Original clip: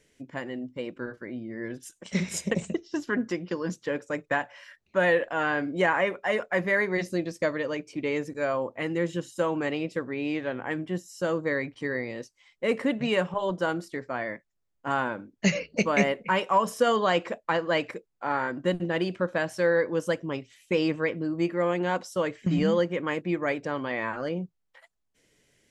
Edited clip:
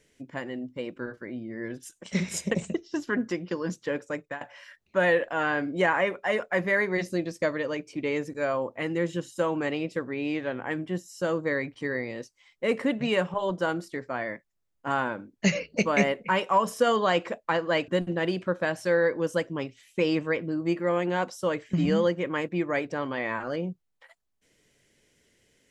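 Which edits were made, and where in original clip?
0:03.96–0:04.41: fade out equal-power, to −18.5 dB
0:17.88–0:18.61: remove

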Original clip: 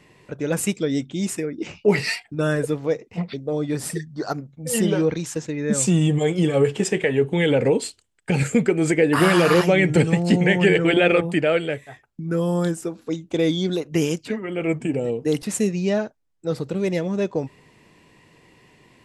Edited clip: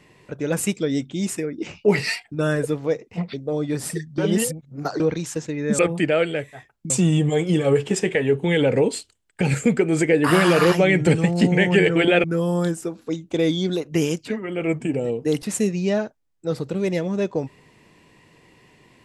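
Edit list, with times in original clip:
0:04.18–0:05.00: reverse
0:11.13–0:12.24: move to 0:05.79

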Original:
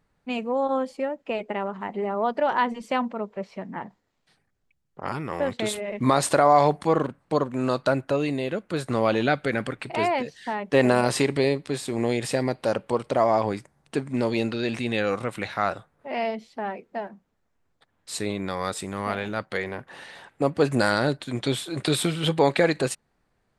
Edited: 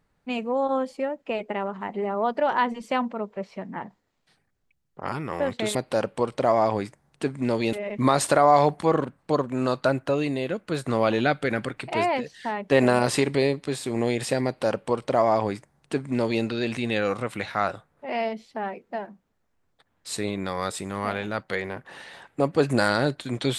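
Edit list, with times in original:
0:12.47–0:14.45: duplicate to 0:05.75

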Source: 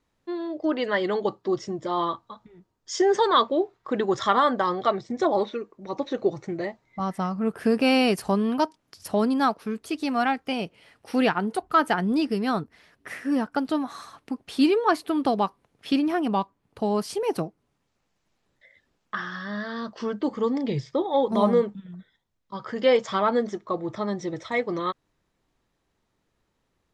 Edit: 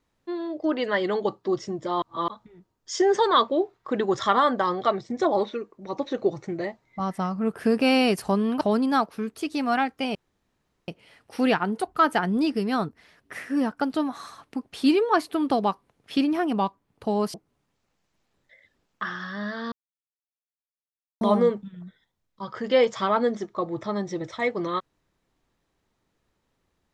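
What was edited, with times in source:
0:02.02–0:02.28: reverse
0:08.61–0:09.09: remove
0:10.63: splice in room tone 0.73 s
0:17.09–0:17.46: remove
0:19.84–0:21.33: silence

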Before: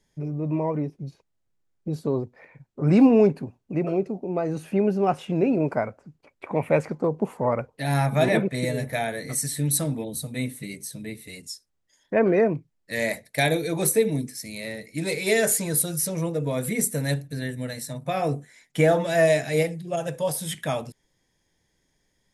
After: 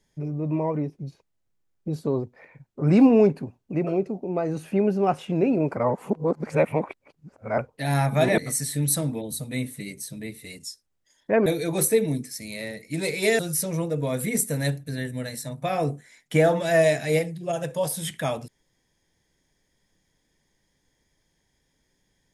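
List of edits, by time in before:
0:05.77–0:07.58: reverse
0:08.38–0:09.21: remove
0:12.29–0:13.50: remove
0:15.43–0:15.83: remove

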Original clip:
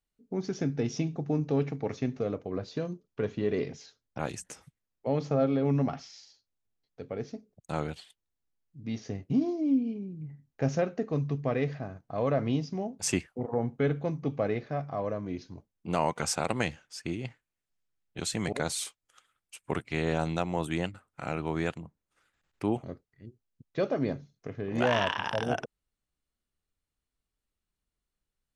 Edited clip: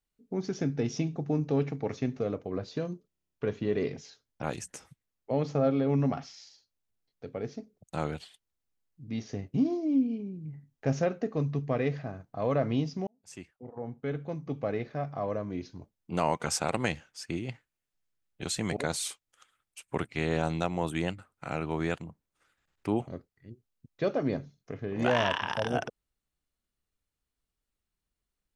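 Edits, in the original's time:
0:03.08: stutter 0.03 s, 9 plays
0:12.83–0:14.97: fade in

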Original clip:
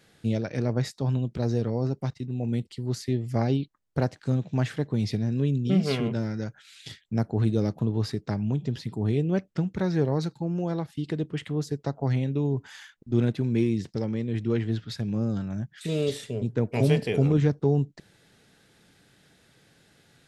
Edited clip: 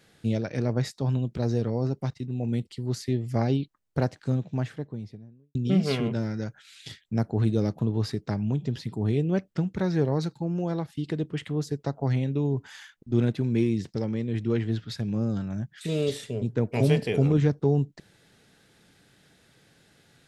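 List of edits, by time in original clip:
0:04.06–0:05.55: fade out and dull

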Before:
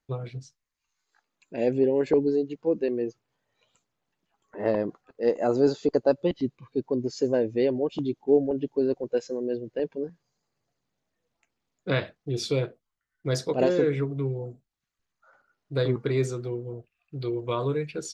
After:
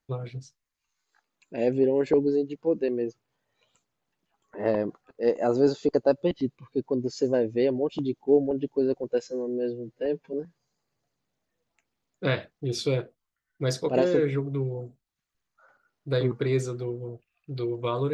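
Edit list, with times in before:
0:09.27–0:09.98: time-stretch 1.5×

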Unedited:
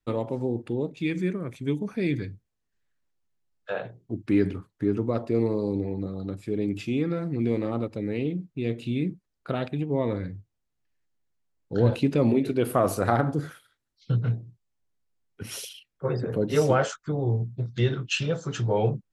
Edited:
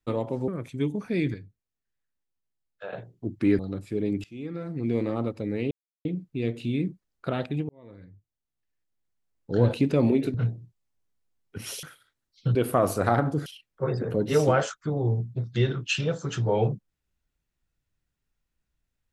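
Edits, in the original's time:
0:00.48–0:01.35: remove
0:02.21–0:03.80: clip gain −7.5 dB
0:04.46–0:06.15: remove
0:06.80–0:07.58: fade in, from −21.5 dB
0:08.27: splice in silence 0.34 s
0:09.91–0:11.81: fade in
0:12.56–0:13.47: swap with 0:14.19–0:15.68

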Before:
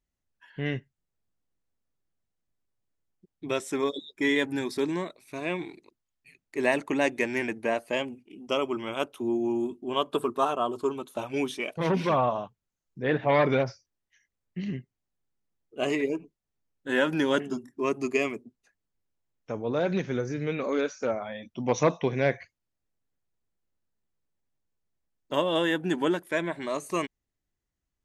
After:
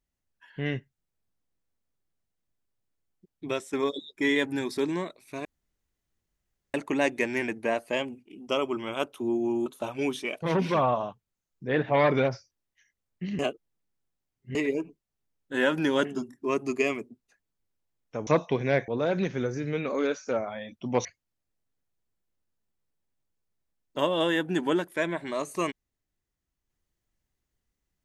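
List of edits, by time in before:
0:03.48–0:03.73: fade out, to −9.5 dB
0:05.45–0:06.74: fill with room tone
0:09.66–0:11.01: remove
0:14.74–0:15.90: reverse
0:21.79–0:22.40: move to 0:19.62

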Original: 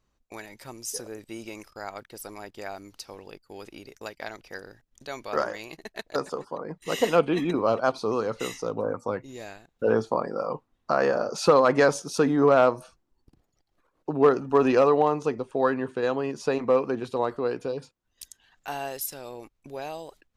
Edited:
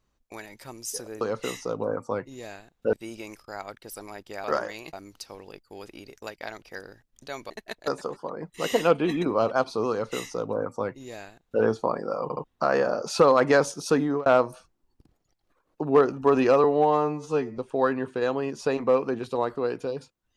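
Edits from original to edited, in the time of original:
0:05.29–0:05.78: move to 0:02.72
0:08.18–0:09.90: duplicate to 0:01.21
0:10.51: stutter in place 0.07 s, 3 plays
0:12.19–0:12.54: fade out equal-power
0:14.92–0:15.39: time-stretch 2×

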